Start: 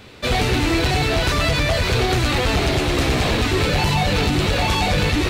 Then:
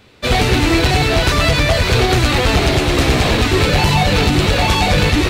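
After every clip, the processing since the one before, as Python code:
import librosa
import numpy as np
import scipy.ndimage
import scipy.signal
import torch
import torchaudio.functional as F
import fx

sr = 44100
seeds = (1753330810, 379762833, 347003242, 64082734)

y = fx.upward_expand(x, sr, threshold_db=-38.0, expansion=1.5)
y = F.gain(torch.from_numpy(y), 6.0).numpy()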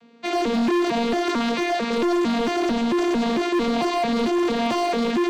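y = fx.vocoder_arp(x, sr, chord='bare fifth', root=58, every_ms=224)
y = np.clip(y, -10.0 ** (-16.5 / 20.0), 10.0 ** (-16.5 / 20.0))
y = F.gain(torch.from_numpy(y), -2.0).numpy()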